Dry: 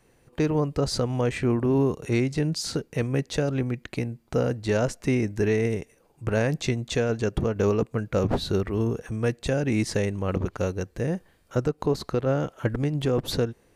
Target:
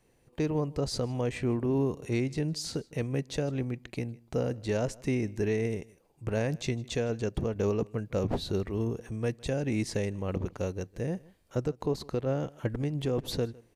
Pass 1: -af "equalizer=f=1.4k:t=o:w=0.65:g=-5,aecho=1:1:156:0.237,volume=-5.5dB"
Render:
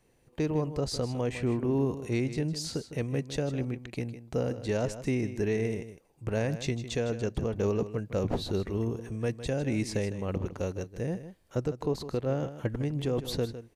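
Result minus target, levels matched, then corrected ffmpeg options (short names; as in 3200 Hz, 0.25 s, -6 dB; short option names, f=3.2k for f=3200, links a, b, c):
echo-to-direct +11.5 dB
-af "equalizer=f=1.4k:t=o:w=0.65:g=-5,aecho=1:1:156:0.0631,volume=-5.5dB"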